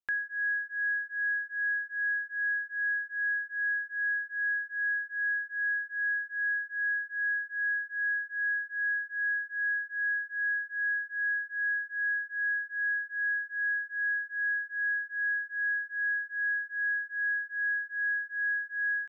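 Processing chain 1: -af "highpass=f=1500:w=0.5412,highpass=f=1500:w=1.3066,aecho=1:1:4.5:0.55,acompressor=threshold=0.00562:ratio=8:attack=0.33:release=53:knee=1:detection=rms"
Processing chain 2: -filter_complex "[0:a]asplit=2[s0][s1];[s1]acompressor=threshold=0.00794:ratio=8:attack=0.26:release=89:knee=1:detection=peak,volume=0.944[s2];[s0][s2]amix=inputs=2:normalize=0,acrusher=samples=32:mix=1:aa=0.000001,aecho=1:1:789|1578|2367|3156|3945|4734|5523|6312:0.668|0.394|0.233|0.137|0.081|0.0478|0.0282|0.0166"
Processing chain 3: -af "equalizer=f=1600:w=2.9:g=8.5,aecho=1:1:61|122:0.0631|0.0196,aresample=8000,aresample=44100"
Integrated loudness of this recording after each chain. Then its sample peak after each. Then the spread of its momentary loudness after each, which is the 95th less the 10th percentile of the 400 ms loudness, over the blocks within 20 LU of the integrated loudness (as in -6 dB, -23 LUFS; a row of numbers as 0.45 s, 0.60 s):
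-45.5 LUFS, -31.0 LUFS, -22.5 LUFS; -40.5 dBFS, -23.0 dBFS, -18.0 dBFS; 0 LU, 0 LU, 0 LU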